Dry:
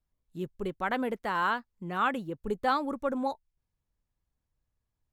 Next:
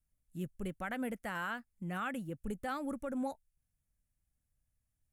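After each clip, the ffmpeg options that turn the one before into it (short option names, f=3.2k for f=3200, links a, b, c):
-af "equalizer=f=400:t=o:w=0.67:g=-10,equalizer=f=1k:t=o:w=0.67:g=-12,equalizer=f=4k:t=o:w=0.67:g=-11,equalizer=f=10k:t=o:w=0.67:g=9,alimiter=level_in=5dB:limit=-24dB:level=0:latency=1:release=150,volume=-5dB"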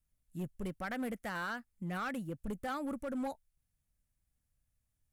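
-af "asoftclip=type=hard:threshold=-34dB,volume=1dB"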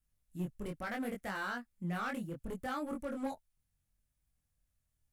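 -af "flanger=delay=20:depth=3.7:speed=0.71,volume=3dB"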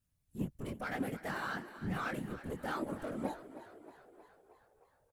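-filter_complex "[0:a]afftfilt=real='hypot(re,im)*cos(2*PI*random(0))':imag='hypot(re,im)*sin(2*PI*random(1))':win_size=512:overlap=0.75,asplit=8[a][b][c][d][e][f][g][h];[b]adelay=314,afreqshift=42,volume=-14dB[i];[c]adelay=628,afreqshift=84,volume=-18.3dB[j];[d]adelay=942,afreqshift=126,volume=-22.6dB[k];[e]adelay=1256,afreqshift=168,volume=-26.9dB[l];[f]adelay=1570,afreqshift=210,volume=-31.2dB[m];[g]adelay=1884,afreqshift=252,volume=-35.5dB[n];[h]adelay=2198,afreqshift=294,volume=-39.8dB[o];[a][i][j][k][l][m][n][o]amix=inputs=8:normalize=0,volume=6dB"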